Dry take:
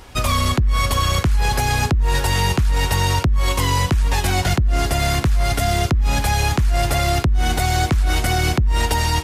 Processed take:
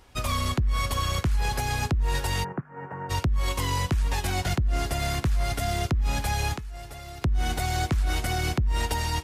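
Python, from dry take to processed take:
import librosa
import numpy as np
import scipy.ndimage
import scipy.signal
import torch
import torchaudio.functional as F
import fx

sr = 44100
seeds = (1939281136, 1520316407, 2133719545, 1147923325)

y = fx.ellip_bandpass(x, sr, low_hz=140.0, high_hz=1600.0, order=3, stop_db=40, at=(2.43, 3.09), fade=0.02)
y = fx.comb_fb(y, sr, f0_hz=430.0, decay_s=0.16, harmonics='all', damping=0.0, mix_pct=70, at=(6.57, 7.21), fade=0.02)
y = fx.upward_expand(y, sr, threshold_db=-27.0, expansion=1.5)
y = y * 10.0 ** (-6.5 / 20.0)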